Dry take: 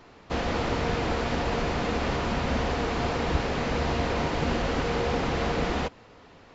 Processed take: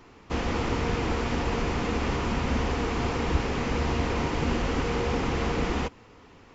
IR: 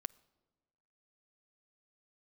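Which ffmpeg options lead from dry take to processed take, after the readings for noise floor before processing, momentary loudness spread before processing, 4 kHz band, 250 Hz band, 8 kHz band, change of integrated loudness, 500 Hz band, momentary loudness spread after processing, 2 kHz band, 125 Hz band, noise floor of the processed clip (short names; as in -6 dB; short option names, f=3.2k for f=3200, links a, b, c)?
-52 dBFS, 1 LU, -1.5 dB, +1.0 dB, n/a, -0.5 dB, -1.5 dB, 1 LU, -1.0 dB, +1.0 dB, -52 dBFS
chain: -af "equalizer=f=160:t=o:w=0.67:g=-3,equalizer=f=630:t=o:w=0.67:g=-8,equalizer=f=1.6k:t=o:w=0.67:g=-4,equalizer=f=4k:t=o:w=0.67:g=-6,acontrast=45,volume=-3.5dB"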